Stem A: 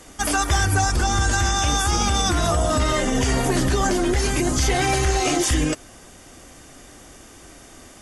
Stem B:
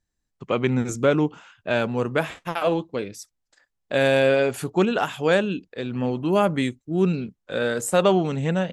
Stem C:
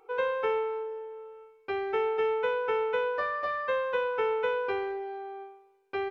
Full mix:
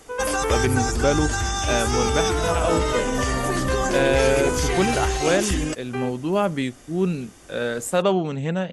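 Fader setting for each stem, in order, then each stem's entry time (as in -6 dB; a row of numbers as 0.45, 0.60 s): -4.0, -1.5, +2.0 dB; 0.00, 0.00, 0.00 s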